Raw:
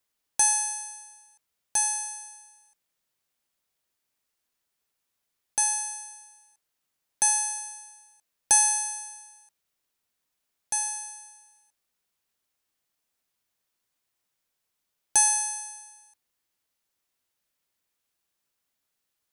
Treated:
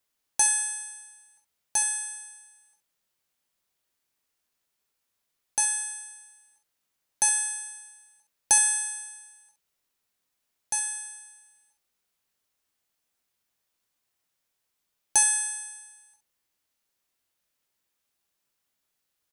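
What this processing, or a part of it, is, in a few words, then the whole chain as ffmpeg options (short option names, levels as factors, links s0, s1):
slapback doubling: -filter_complex "[0:a]asplit=3[s0][s1][s2];[s1]adelay=23,volume=0.355[s3];[s2]adelay=70,volume=0.299[s4];[s0][s3][s4]amix=inputs=3:normalize=0"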